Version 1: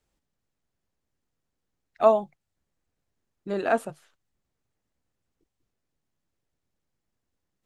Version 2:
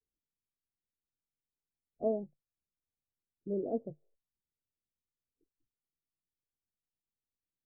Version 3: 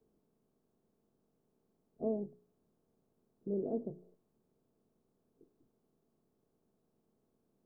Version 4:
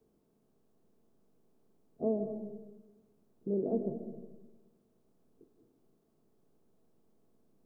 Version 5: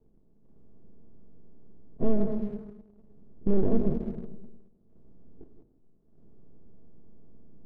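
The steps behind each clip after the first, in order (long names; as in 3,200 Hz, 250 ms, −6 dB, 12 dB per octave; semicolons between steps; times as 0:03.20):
noise reduction from a noise print of the clip's start 14 dB; Butterworth low-pass 530 Hz 36 dB per octave; level −4.5 dB
compressor on every frequency bin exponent 0.6; parametric band 650 Hz −8 dB 0.75 octaves; hum removal 59.91 Hz, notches 7; level −1 dB
comb and all-pass reverb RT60 1.1 s, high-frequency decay 0.25×, pre-delay 100 ms, DRR 9 dB; level +3.5 dB
gain on one half-wave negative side −7 dB; spectral tilt −4.5 dB per octave; leveller curve on the samples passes 1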